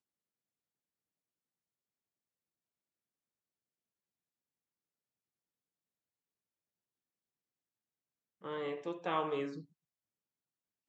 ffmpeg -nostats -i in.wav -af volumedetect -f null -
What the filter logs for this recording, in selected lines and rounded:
mean_volume: -47.2 dB
max_volume: -21.2 dB